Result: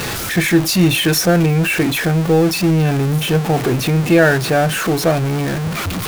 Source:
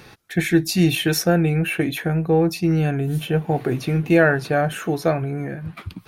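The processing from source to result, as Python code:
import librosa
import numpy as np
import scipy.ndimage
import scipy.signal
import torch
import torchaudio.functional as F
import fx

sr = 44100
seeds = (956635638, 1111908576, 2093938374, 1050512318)

y = x + 0.5 * 10.0 ** (-19.5 / 20.0) * np.sign(x)
y = F.gain(torch.from_numpy(y), 2.0).numpy()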